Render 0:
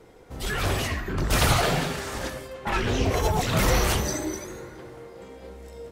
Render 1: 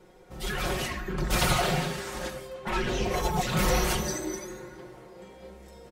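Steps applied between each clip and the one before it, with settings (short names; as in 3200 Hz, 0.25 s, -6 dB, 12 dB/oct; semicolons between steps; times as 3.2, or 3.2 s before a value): comb 5.5 ms, depth 77%; gain -5 dB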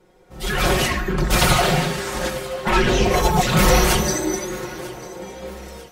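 AGC gain up to 14 dB; thinning echo 0.944 s, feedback 46%, level -19 dB; gain -1.5 dB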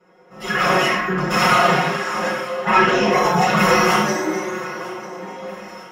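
in parallel at -7.5 dB: soft clip -16 dBFS, distortion -11 dB; on the sum: reverb, pre-delay 3 ms, DRR -5.5 dB; gain -15.5 dB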